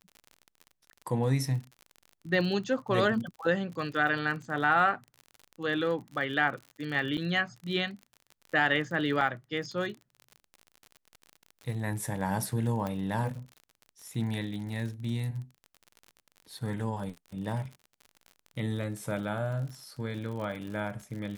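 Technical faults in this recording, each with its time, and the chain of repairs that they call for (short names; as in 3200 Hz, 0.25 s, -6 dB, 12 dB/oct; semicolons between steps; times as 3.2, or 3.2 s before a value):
crackle 53/s -38 dBFS
7.17–7.18 gap 7.6 ms
9.21 gap 2.3 ms
12.87 pop -21 dBFS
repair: de-click; interpolate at 7.17, 7.6 ms; interpolate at 9.21, 2.3 ms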